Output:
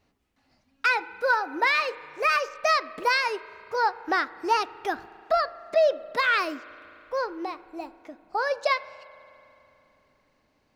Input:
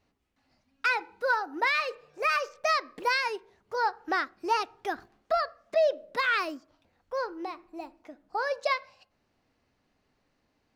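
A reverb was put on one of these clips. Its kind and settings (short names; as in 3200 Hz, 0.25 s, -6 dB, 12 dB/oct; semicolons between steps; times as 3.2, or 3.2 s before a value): spring tank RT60 3.2 s, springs 36 ms, chirp 45 ms, DRR 17.5 dB; gain +3.5 dB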